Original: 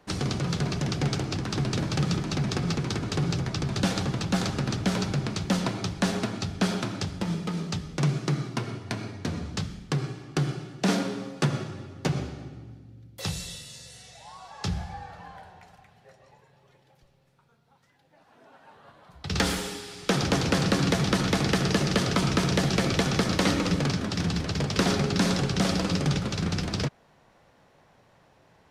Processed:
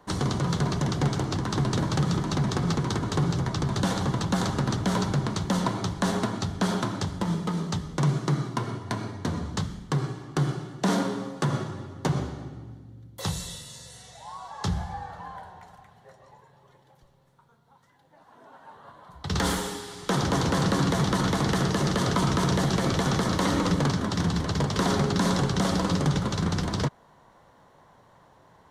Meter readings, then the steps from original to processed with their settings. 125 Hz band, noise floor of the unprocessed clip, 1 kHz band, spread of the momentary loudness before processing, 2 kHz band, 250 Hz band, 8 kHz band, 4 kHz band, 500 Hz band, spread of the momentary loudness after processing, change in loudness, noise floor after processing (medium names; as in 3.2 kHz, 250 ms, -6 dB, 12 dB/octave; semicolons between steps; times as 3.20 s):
+1.5 dB, -61 dBFS, +3.5 dB, 11 LU, -1.5 dB, +0.5 dB, 0.0 dB, -2.0 dB, +0.5 dB, 12 LU, +0.5 dB, -58 dBFS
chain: peak limiter -16.5 dBFS, peak gain reduction 6 dB; graphic EQ with 31 bands 1 kHz +8 dB, 2.5 kHz -10 dB, 5 kHz -5 dB; trim +2 dB